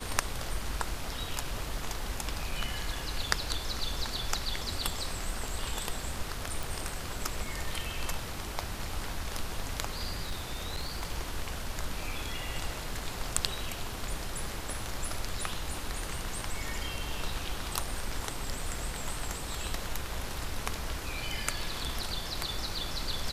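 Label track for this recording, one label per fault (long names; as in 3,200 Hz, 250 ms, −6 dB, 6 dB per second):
6.630000	6.630000	click
10.230000	11.060000	clipping −29 dBFS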